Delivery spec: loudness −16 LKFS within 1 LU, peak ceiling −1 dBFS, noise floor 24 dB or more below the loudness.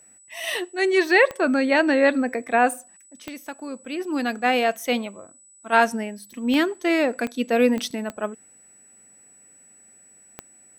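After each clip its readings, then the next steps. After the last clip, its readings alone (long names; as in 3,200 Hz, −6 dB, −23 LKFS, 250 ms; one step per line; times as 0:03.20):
number of clicks 7; interfering tone 7,900 Hz; level of the tone −50 dBFS; integrated loudness −22.0 LKFS; sample peak −4.0 dBFS; target loudness −16.0 LKFS
→ click removal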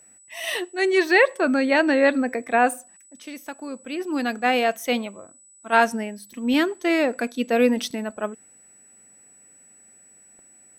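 number of clicks 0; interfering tone 7,900 Hz; level of the tone −50 dBFS
→ notch filter 7,900 Hz, Q 30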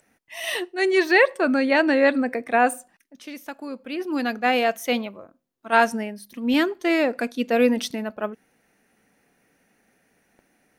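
interfering tone none found; integrated loudness −22.0 LKFS; sample peak −4.0 dBFS; target loudness −16.0 LKFS
→ level +6 dB
brickwall limiter −1 dBFS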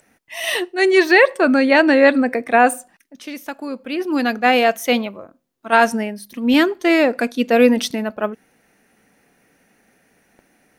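integrated loudness −16.5 LKFS; sample peak −1.0 dBFS; background noise floor −61 dBFS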